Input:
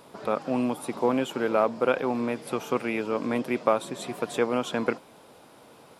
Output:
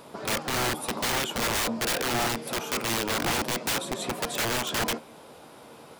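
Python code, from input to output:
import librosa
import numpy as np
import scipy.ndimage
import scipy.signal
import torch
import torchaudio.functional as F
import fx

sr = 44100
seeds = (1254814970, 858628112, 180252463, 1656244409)

y = fx.comb_fb(x, sr, f0_hz=77.0, decay_s=0.19, harmonics='all', damping=0.0, mix_pct=50)
y = (np.mod(10.0 ** (28.5 / 20.0) * y + 1.0, 2.0) - 1.0) / 10.0 ** (28.5 / 20.0)
y = y * 10.0 ** (7.0 / 20.0)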